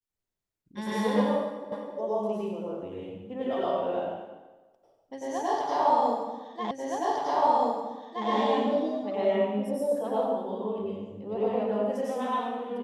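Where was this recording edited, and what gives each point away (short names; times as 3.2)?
1.72 repeat of the last 0.26 s
6.71 repeat of the last 1.57 s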